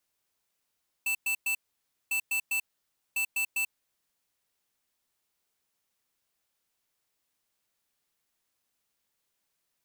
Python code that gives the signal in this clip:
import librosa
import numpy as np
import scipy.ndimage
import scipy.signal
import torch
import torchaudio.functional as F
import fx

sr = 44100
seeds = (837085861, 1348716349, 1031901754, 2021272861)

y = fx.beep_pattern(sr, wave='square', hz=2650.0, on_s=0.09, off_s=0.11, beeps=3, pause_s=0.56, groups=3, level_db=-28.5)